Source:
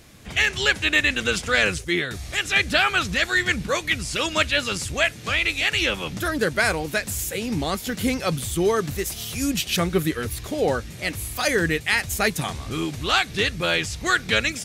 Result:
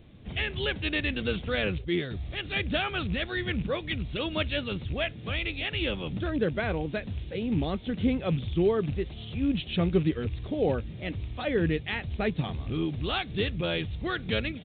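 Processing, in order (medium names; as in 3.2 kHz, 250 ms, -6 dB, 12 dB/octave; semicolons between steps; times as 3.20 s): rattle on loud lows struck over -27 dBFS, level -26 dBFS; resampled via 8 kHz; peaking EQ 1.6 kHz -13.5 dB 2.5 oct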